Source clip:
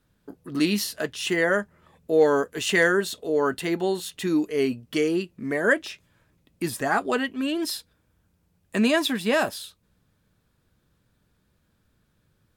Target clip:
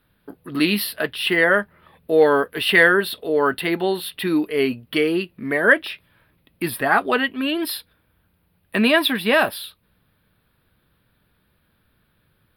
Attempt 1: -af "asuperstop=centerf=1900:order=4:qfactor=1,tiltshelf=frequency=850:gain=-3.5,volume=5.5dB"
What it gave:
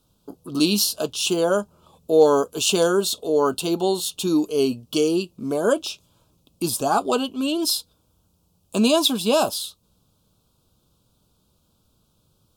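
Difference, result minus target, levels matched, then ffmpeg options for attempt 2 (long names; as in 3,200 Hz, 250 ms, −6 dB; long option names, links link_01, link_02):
2,000 Hz band −14.0 dB
-af "asuperstop=centerf=6700:order=4:qfactor=1,tiltshelf=frequency=850:gain=-3.5,volume=5.5dB"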